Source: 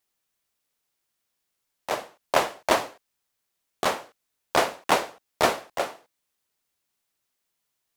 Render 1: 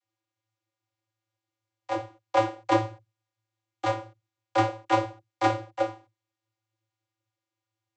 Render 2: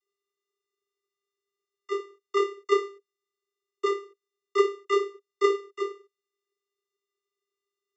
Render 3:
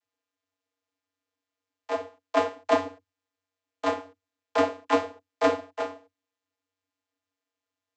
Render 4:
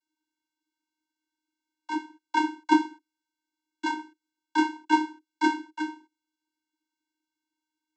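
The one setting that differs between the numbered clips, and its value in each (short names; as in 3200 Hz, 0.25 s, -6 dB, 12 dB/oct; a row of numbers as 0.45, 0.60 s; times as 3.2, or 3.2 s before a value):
vocoder, frequency: 110, 400, 94, 310 Hz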